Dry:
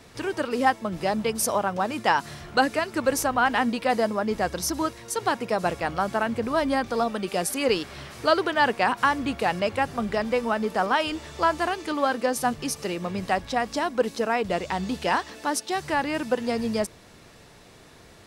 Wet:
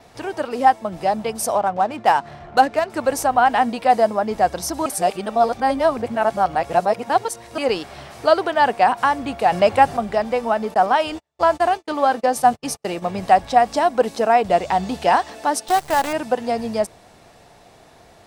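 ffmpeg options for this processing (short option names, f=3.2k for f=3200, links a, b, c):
-filter_complex "[0:a]asettb=1/sr,asplit=3[a][b][c];[a]atrim=end=1.554[d];[b]atrim=start=1.55:end=2.9,asetpts=PTS-STARTPTS,afade=t=in:d=0.004:c=qsin,afade=t=out:st=1.346:d=0.004:c=qsin,adynamicsmooth=sensitivity=7.5:basefreq=2k[e];[c]atrim=start=2.896[f];[d][e]acrossfade=d=0.004:c1=hsin:c2=qsin[g];[g][f]acrossfade=d=0.004:c1=qsin:c2=hsin,asettb=1/sr,asplit=3[h][i][j];[h]atrim=end=10.744[k];[i]atrim=start=10.74:end=13.15,asetpts=PTS-STARTPTS,afade=t=in:d=0.004:c=qsin,afade=t=out:st=2.406:d=0.004:c=qsin,agate=range=-43dB:threshold=-34dB:ratio=16:release=100:detection=peak[l];[j]atrim=start=13.146[m];[k][l]acrossfade=d=0.004:c1=hsin:c2=qsin[n];[n][m]acrossfade=d=0.004:c1=qsin:c2=hsin,asettb=1/sr,asplit=3[o][p][q];[o]atrim=end=15.684[r];[p]atrim=start=15.68:end=16.13,asetpts=PTS-STARTPTS,afade=t=in:d=0.004:c=qsin,afade=t=out:st=0.446:d=0.004:c=qsin,acrusher=bits=5:dc=4:mix=0:aa=0.000001[s];[q]atrim=start=16.126[t];[r][s]acrossfade=d=0.004:c1=hsin:c2=qsin[u];[u][t]acrossfade=d=0.004:c1=qsin:c2=hsin,asplit=5[v][w][x][y][z];[v]atrim=end=4.862[aa];[w]atrim=start=4.858:end=7.582,asetpts=PTS-STARTPTS,areverse[ab];[x]atrim=start=7.578:end=9.522[ac];[y]atrim=start=9.518:end=9.972,asetpts=PTS-STARTPTS,volume=5dB[ad];[z]atrim=start=9.968[ae];[aa][ab]acrossfade=d=0.004:c1=hsin:c2=hsin[af];[af][ac]acrossfade=d=0.004:c1=hsin:c2=hsin[ag];[ag][ad]acrossfade=d=0.004:c1=hsin:c2=hsin[ah];[ah][ae]acrossfade=d=0.004:c1=hsin:c2=hsin,equalizer=f=730:t=o:w=0.64:g=11,dynaudnorm=f=310:g=17:m=11.5dB,adynamicequalizer=threshold=0.00282:dfrequency=8400:dqfactor=7.5:tfrequency=8400:tqfactor=7.5:attack=5:release=100:ratio=0.375:range=2.5:mode=boostabove:tftype=bell,volume=-1dB"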